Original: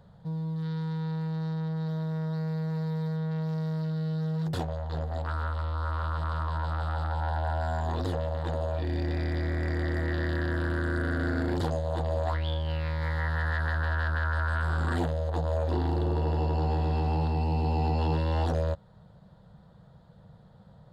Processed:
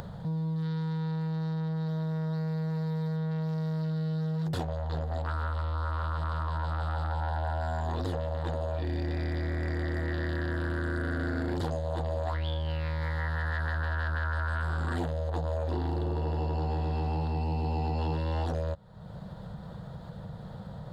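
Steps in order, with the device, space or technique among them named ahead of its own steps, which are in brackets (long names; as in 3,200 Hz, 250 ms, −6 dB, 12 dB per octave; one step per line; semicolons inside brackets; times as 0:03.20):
upward and downward compression (upward compression, threshold −35 dBFS; downward compressor 3 to 1, threshold −33 dBFS, peak gain reduction 7.5 dB)
level +3.5 dB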